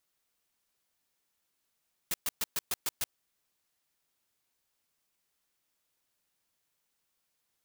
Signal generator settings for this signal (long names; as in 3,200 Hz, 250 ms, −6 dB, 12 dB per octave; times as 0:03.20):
noise bursts white, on 0.03 s, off 0.12 s, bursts 7, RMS −31 dBFS